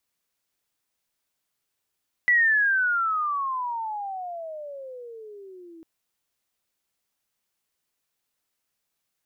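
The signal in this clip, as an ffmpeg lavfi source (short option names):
-f lavfi -i "aevalsrc='pow(10,(-15.5-27.5*t/3.55)/20)*sin(2*PI*1980*3.55/(-31.5*log(2)/12)*(exp(-31.5*log(2)/12*t/3.55)-1))':d=3.55:s=44100"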